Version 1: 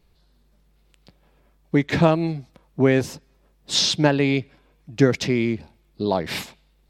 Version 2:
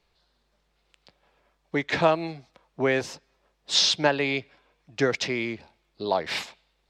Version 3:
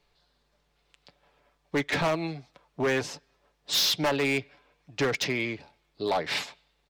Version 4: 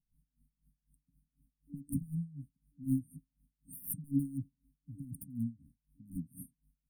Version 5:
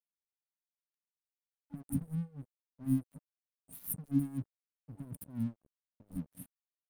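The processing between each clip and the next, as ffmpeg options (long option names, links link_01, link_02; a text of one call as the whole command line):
ffmpeg -i in.wav -filter_complex "[0:a]acrossover=split=460 7600:gain=0.224 1 0.178[link_01][link_02][link_03];[link_01][link_02][link_03]amix=inputs=3:normalize=0" out.wav
ffmpeg -i in.wav -af "aecho=1:1:6.9:0.35,asoftclip=type=hard:threshold=-21.5dB" out.wav
ffmpeg -i in.wav -af "afftfilt=real='re*(1-between(b*sr/4096,280,8600))':imag='im*(1-between(b*sr/4096,280,8600))':win_size=4096:overlap=0.75,aeval=exprs='val(0)*pow(10,-22*(0.5-0.5*cos(2*PI*4*n/s))/20)':channel_layout=same,volume=6dB" out.wav
ffmpeg -i in.wav -af "aeval=exprs='sgn(val(0))*max(abs(val(0))-0.00188,0)':channel_layout=same,volume=1.5dB" out.wav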